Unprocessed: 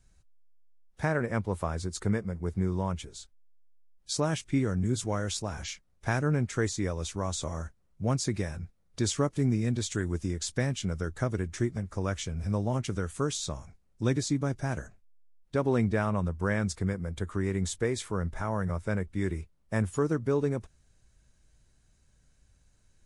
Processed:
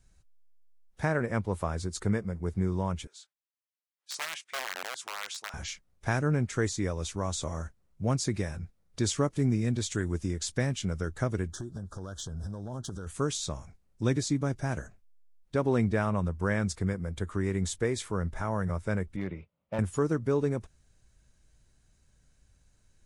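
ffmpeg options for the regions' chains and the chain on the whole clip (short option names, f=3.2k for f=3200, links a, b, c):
-filter_complex "[0:a]asettb=1/sr,asplit=3[a][b][c];[a]atrim=end=3.074[d];[b]atrim=start=3.07:end=5.54,asetpts=PTS-STARTPTS,afade=t=in:d=0.004:c=qsin,afade=t=out:st=2.466:d=0.004:c=qsin,aeval=exprs='(mod(12.6*val(0)+1,2)-1)/12.6':c=same,highpass=1.1k,highshelf=f=4.1k:g=-8.5[e];[c]atrim=start=5.536[f];[d][e]acrossfade=d=0.004:c1=hsin:c2=qsin[g];[g][f]acrossfade=d=0.004:c1=qsin:c2=hsin,asettb=1/sr,asplit=3[h][i][j];[h]atrim=end=11.514[k];[i]atrim=start=11.51:end=13.07,asetpts=PTS-STARTPTS,afade=t=in:d=0.004:c=qsin,afade=t=out:st=1.556:d=0.004:c=qsin,acompressor=threshold=-32dB:ratio=20:attack=3.2:release=140:knee=1:detection=peak,volume=30dB,asoftclip=hard,volume=-30dB,asuperstop=centerf=2300:order=12:qfactor=1.5[l];[j]atrim=start=13.066[m];[k][l]acrossfade=d=0.004:c1=hsin:c2=qsin[n];[n][m]acrossfade=d=0.004:c1=qsin:c2=hsin,asettb=1/sr,asplit=3[o][p][q];[o]atrim=end=19.164[r];[p]atrim=start=19.16:end=19.79,asetpts=PTS-STARTPTS,afade=t=in:d=0.004:c=qsin,afade=t=out:st=0.626:d=0.004:c=qsin,highpass=140,equalizer=f=260:t=q:w=4:g=-4,equalizer=f=370:t=q:w=4:g=-8,equalizer=f=560:t=q:w=4:g=6,equalizer=f=1.7k:t=q:w=4:g=-8,lowpass=f=3.2k:w=0.5412,lowpass=f=3.2k:w=1.3066,asoftclip=type=hard:threshold=-26dB[s];[q]atrim=start=19.786[t];[r][s]acrossfade=d=0.004:c1=hsin:c2=qsin[u];[u][t]acrossfade=d=0.004:c1=qsin:c2=hsin"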